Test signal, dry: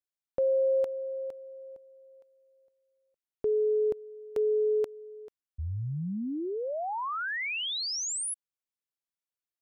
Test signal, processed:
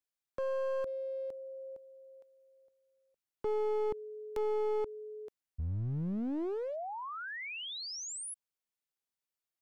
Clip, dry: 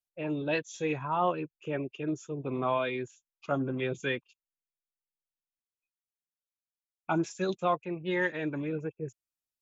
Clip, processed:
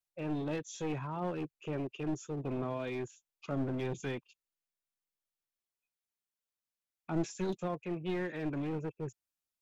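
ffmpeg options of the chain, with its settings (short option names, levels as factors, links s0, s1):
-filter_complex "[0:a]acrossover=split=430[s0][s1];[s1]acompressor=threshold=0.00794:ratio=4:attack=1.6:release=57:knee=1:detection=peak[s2];[s0][s2]amix=inputs=2:normalize=0,aeval=exprs='clip(val(0),-1,0.0168)':c=same"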